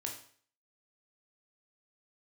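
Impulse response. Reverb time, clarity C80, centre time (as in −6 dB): 0.50 s, 10.5 dB, 24 ms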